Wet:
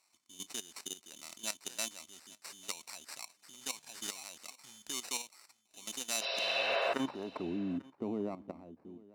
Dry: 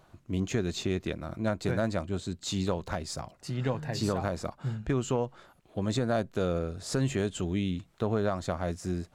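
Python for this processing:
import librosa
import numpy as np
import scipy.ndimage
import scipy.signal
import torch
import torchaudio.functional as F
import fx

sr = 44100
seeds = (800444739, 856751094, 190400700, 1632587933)

p1 = fx.fade_out_tail(x, sr, length_s=2.64)
p2 = fx.graphic_eq(p1, sr, hz=(125, 250, 500, 1000, 2000, 4000, 8000), db=(-11, 8, -6, 9, -12, -10, 4))
p3 = fx.level_steps(p2, sr, step_db=14)
p4 = fx.sample_hold(p3, sr, seeds[0], rate_hz=3300.0, jitter_pct=0)
p5 = fx.spec_repair(p4, sr, seeds[1], start_s=6.24, length_s=0.66, low_hz=350.0, high_hz=5800.0, source='before')
p6 = fx.filter_sweep_bandpass(p5, sr, from_hz=7200.0, to_hz=330.0, start_s=6.14, end_s=7.61, q=1.1)
p7 = p6 + fx.echo_single(p6, sr, ms=844, db=-22.5, dry=0)
y = F.gain(torch.from_numpy(p7), 9.0).numpy()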